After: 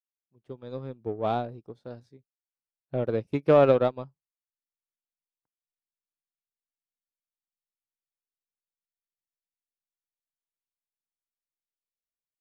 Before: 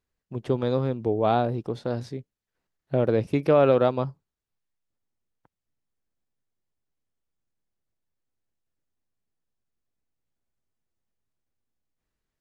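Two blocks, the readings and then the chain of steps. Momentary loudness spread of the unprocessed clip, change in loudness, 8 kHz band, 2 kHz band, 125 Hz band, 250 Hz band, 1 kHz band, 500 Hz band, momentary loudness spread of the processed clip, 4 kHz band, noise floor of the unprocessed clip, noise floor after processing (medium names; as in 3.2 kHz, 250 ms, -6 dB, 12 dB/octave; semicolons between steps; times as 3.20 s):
15 LU, -1.0 dB, no reading, -3.0 dB, -6.0 dB, -5.0 dB, -3.5 dB, -2.0 dB, 24 LU, -4.5 dB, under -85 dBFS, under -85 dBFS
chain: fade-in on the opening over 0.92 s; spectral noise reduction 6 dB; in parallel at -9 dB: saturation -23.5 dBFS, distortion -7 dB; on the sum: upward expansion 2.5:1, over -32 dBFS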